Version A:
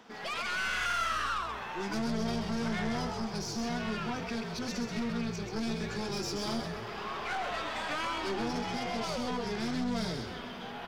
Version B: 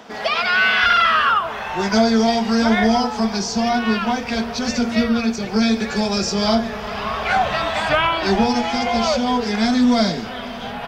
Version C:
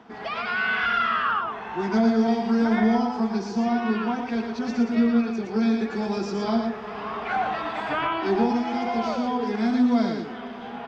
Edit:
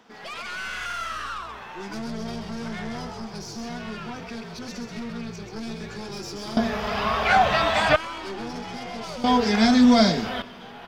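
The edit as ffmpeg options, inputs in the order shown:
-filter_complex "[1:a]asplit=2[s0][s1];[0:a]asplit=3[s2][s3][s4];[s2]atrim=end=6.572[s5];[s0]atrim=start=6.568:end=7.962[s6];[s3]atrim=start=7.958:end=9.242[s7];[s1]atrim=start=9.238:end=10.422[s8];[s4]atrim=start=10.418[s9];[s5][s6]acrossfade=d=0.004:c1=hsin:c2=hsin[s10];[s10][s7]acrossfade=d=0.004:c1=hsin:c2=hsin[s11];[s11][s8]acrossfade=d=0.004:c1=hsin:c2=hsin[s12];[s12][s9]acrossfade=d=0.004:c1=hsin:c2=hsin"

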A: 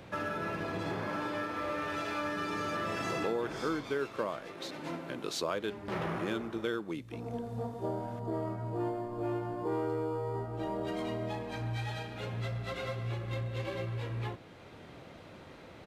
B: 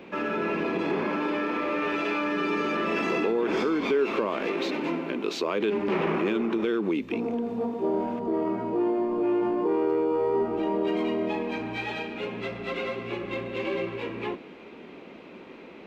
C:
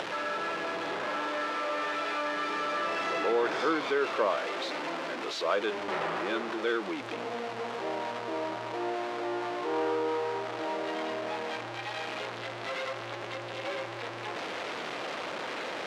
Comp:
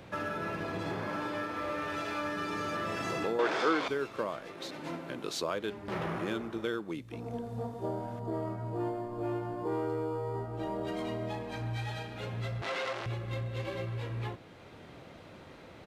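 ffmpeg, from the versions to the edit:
-filter_complex "[2:a]asplit=2[s0][s1];[0:a]asplit=3[s2][s3][s4];[s2]atrim=end=3.392[s5];[s0]atrim=start=3.388:end=3.882[s6];[s3]atrim=start=3.878:end=12.622[s7];[s1]atrim=start=12.618:end=13.062[s8];[s4]atrim=start=13.058[s9];[s5][s6]acrossfade=d=0.004:c1=hsin:c2=hsin[s10];[s10][s7]acrossfade=d=0.004:c1=hsin:c2=hsin[s11];[s11][s8]acrossfade=d=0.004:c1=hsin:c2=hsin[s12];[s12][s9]acrossfade=d=0.004:c1=hsin:c2=hsin"

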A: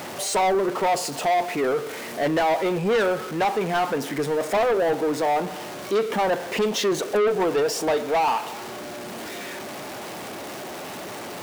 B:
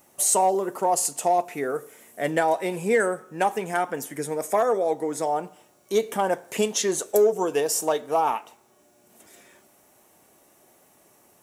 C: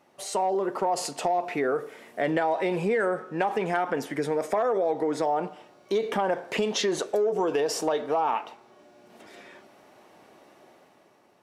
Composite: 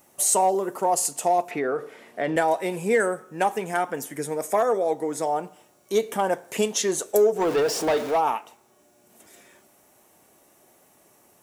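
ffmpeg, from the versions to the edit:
-filter_complex "[1:a]asplit=3[s0][s1][s2];[s0]atrim=end=1.512[s3];[2:a]atrim=start=1.508:end=2.362[s4];[s1]atrim=start=2.358:end=7.49[s5];[0:a]atrim=start=7.33:end=8.23[s6];[s2]atrim=start=8.07[s7];[s3][s4]acrossfade=d=0.004:c1=hsin:c2=hsin[s8];[s8][s5]acrossfade=d=0.004:c1=hsin:c2=hsin[s9];[s9][s6]acrossfade=d=0.16:c1=tri:c2=tri[s10];[s10][s7]acrossfade=d=0.16:c1=tri:c2=tri"

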